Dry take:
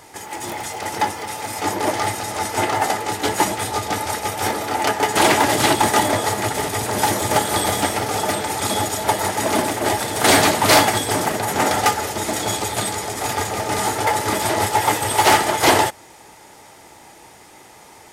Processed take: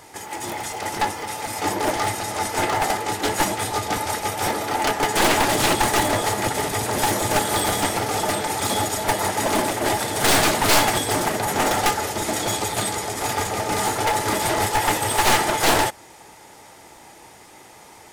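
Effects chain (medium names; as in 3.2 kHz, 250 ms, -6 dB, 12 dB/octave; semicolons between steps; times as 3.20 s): one-sided wavefolder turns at -15 dBFS; crackling interface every 0.25 s, samples 256, repeat, from 0.71 s; trim -1 dB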